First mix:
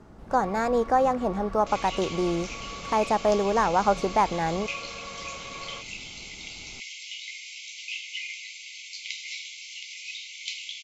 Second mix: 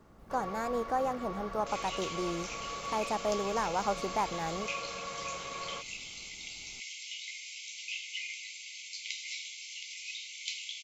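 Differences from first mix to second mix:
speech −9.5 dB
second sound −5.0 dB
master: remove high-frequency loss of the air 52 metres

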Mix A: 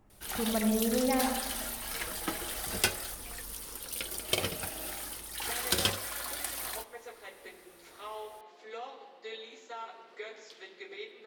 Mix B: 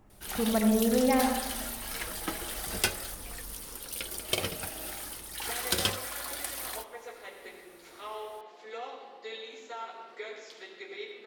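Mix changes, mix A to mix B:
speech +4.0 dB
second sound: send +11.0 dB

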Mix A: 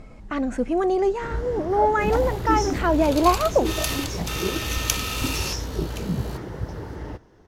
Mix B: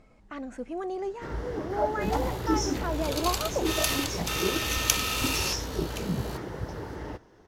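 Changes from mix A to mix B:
speech −10.5 dB
master: add low-shelf EQ 210 Hz −6.5 dB

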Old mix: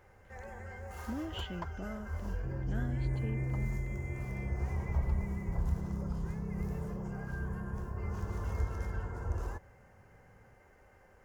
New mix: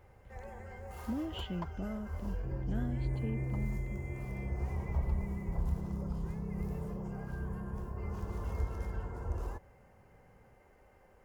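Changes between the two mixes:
speech: add parametric band 62 Hz +12.5 dB 2.5 octaves
master: add graphic EQ with 15 bands 100 Hz −4 dB, 1,600 Hz −6 dB, 6,300 Hz −5 dB

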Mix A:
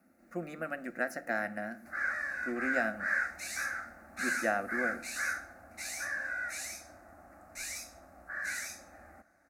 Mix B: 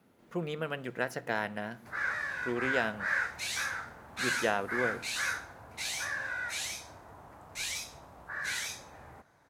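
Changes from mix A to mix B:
speech: send −6.0 dB
master: remove phaser with its sweep stopped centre 650 Hz, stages 8

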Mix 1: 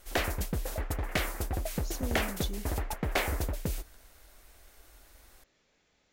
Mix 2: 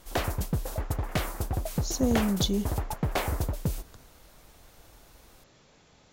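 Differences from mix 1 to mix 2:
speech +11.5 dB
master: add graphic EQ with 10 bands 125 Hz +9 dB, 1,000 Hz +4 dB, 2,000 Hz −5 dB

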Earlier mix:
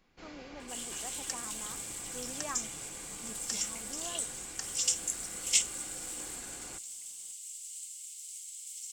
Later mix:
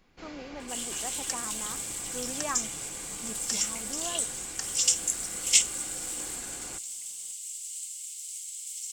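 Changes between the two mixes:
speech +6.5 dB
first sound +4.0 dB
second sound +5.5 dB

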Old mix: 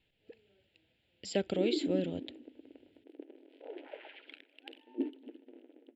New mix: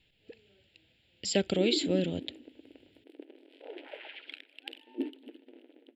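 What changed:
speech: add low-shelf EQ 340 Hz +7 dB
master: add high-shelf EQ 2,000 Hz +11.5 dB

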